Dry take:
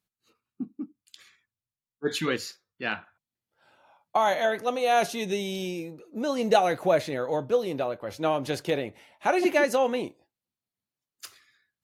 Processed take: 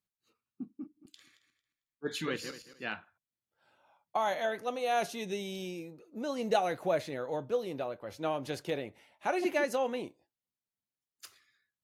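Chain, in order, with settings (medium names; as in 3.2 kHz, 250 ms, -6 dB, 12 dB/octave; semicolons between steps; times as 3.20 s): 0.72–2.85 s: backward echo that repeats 112 ms, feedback 44%, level -8 dB; trim -7.5 dB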